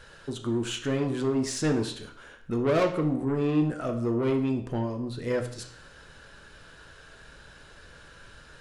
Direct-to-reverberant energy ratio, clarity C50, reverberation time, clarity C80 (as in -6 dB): 4.0 dB, 9.0 dB, 0.55 s, 12.5 dB